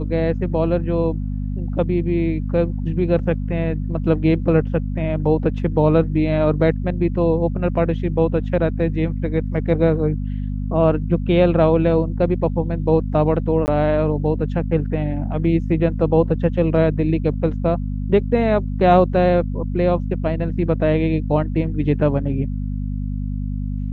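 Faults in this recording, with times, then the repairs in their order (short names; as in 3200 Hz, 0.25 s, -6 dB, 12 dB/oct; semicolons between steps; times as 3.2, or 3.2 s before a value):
hum 50 Hz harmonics 5 -24 dBFS
13.66–13.68 gap 19 ms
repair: de-hum 50 Hz, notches 5; interpolate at 13.66, 19 ms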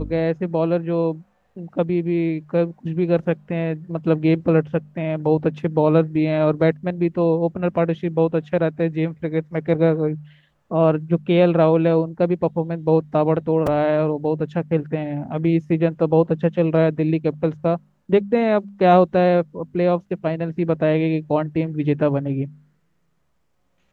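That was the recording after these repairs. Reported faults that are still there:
none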